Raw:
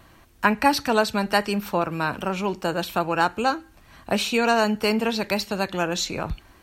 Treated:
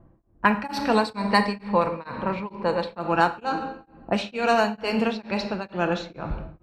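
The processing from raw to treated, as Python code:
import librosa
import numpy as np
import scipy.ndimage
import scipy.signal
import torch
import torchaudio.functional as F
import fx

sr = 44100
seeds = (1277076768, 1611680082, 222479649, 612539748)

y = fx.high_shelf(x, sr, hz=6400.0, db=-10.0)
y = fx.env_lowpass(y, sr, base_hz=510.0, full_db=-17.0)
y = fx.ripple_eq(y, sr, per_octave=0.95, db=10, at=(0.93, 2.99))
y = fx.room_shoebox(y, sr, seeds[0], volume_m3=830.0, walls='mixed', distance_m=0.77)
y = y * np.abs(np.cos(np.pi * 2.2 * np.arange(len(y)) / sr))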